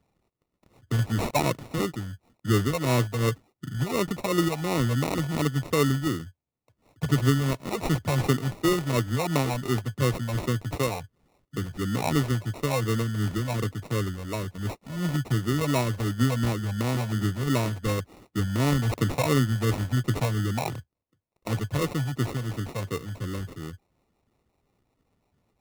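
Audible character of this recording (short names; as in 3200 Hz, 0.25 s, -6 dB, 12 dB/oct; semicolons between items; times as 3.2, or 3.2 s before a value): phasing stages 6, 2.8 Hz, lowest notch 350–1400 Hz; aliases and images of a low sample rate 1600 Hz, jitter 0%; AAC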